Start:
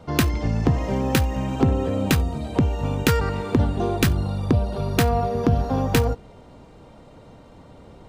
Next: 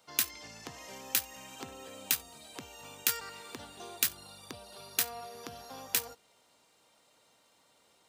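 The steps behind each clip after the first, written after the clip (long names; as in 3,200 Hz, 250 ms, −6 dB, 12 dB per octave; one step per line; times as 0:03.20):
first difference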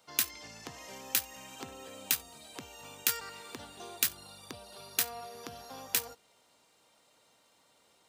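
no processing that can be heard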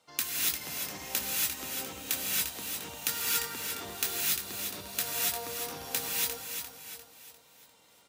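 repeating echo 349 ms, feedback 44%, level −7 dB
tape wow and flutter 17 cents
reverb whose tail is shaped and stops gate 310 ms rising, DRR −5 dB
level −3 dB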